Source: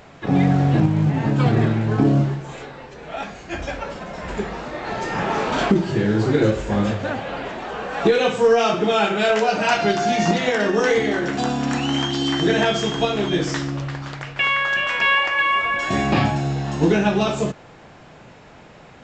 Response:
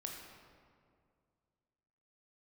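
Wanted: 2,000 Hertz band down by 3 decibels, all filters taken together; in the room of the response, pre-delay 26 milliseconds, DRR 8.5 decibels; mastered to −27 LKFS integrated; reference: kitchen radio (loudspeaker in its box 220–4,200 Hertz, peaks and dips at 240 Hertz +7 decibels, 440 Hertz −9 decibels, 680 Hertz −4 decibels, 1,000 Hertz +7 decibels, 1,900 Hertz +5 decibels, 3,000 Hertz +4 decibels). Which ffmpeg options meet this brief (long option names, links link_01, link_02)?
-filter_complex "[0:a]equalizer=frequency=2000:width_type=o:gain=-7.5,asplit=2[link_01][link_02];[1:a]atrim=start_sample=2205,adelay=26[link_03];[link_02][link_03]afir=irnorm=-1:irlink=0,volume=-6.5dB[link_04];[link_01][link_04]amix=inputs=2:normalize=0,highpass=220,equalizer=frequency=240:width_type=q:width=4:gain=7,equalizer=frequency=440:width_type=q:width=4:gain=-9,equalizer=frequency=680:width_type=q:width=4:gain=-4,equalizer=frequency=1000:width_type=q:width=4:gain=7,equalizer=frequency=1900:width_type=q:width=4:gain=5,equalizer=frequency=3000:width_type=q:width=4:gain=4,lowpass=frequency=4200:width=0.5412,lowpass=frequency=4200:width=1.3066,volume=-5.5dB"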